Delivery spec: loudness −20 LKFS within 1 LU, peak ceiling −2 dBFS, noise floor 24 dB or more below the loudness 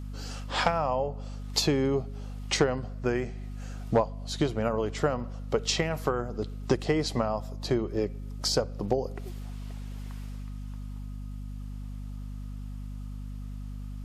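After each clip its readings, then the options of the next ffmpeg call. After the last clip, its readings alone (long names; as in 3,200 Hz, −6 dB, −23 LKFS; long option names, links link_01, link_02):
mains hum 50 Hz; hum harmonics up to 250 Hz; level of the hum −35 dBFS; integrated loudness −31.0 LKFS; sample peak −12.0 dBFS; target loudness −20.0 LKFS
→ -af "bandreject=frequency=50:width_type=h:width=4,bandreject=frequency=100:width_type=h:width=4,bandreject=frequency=150:width_type=h:width=4,bandreject=frequency=200:width_type=h:width=4,bandreject=frequency=250:width_type=h:width=4"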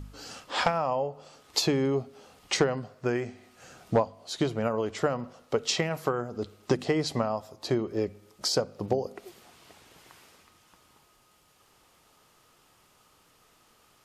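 mains hum none found; integrated loudness −29.5 LKFS; sample peak −12.0 dBFS; target loudness −20.0 LKFS
→ -af "volume=9.5dB"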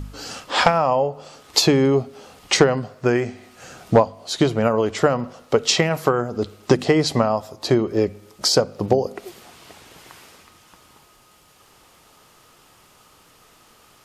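integrated loudness −20.0 LKFS; sample peak −2.5 dBFS; background noise floor −54 dBFS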